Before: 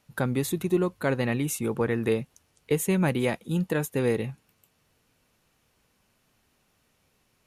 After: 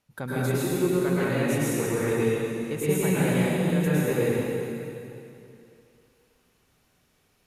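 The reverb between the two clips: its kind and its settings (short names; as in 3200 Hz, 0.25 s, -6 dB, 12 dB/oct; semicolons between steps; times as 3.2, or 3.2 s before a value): plate-style reverb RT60 2.7 s, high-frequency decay 0.95×, pre-delay 95 ms, DRR -9 dB; gain -7.5 dB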